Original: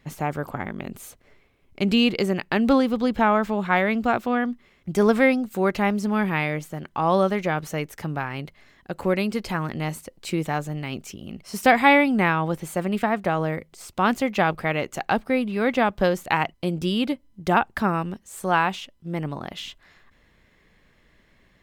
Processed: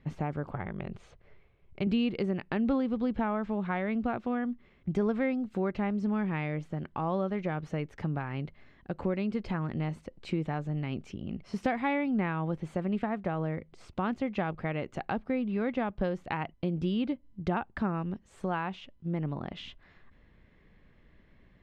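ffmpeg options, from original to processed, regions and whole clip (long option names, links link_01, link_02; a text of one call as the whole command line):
ffmpeg -i in.wav -filter_complex "[0:a]asettb=1/sr,asplit=3[link_01][link_02][link_03];[link_01]atrim=end=0.524[link_04];[link_02]atrim=start=0.52:end=1.87,asetpts=PTS-STARTPTS,afade=type=in:duration=0.004:curve=qsin,afade=type=out:start_time=1.346:duration=0.004:curve=qsin,lowpass=7000,equalizer=frequency=260:width=3.9:gain=-14.5[link_05];[link_03]atrim=start=1.866[link_06];[link_04][link_05]acrossfade=duration=0.004:curve1=hsin:curve2=qsin[link_07];[link_07][link_06]acrossfade=duration=0.004:curve1=qsin:curve2=hsin,lowpass=3400,acompressor=threshold=-30dB:ratio=2,lowshelf=frequency=420:gain=8.5,volume=-6.5dB" out.wav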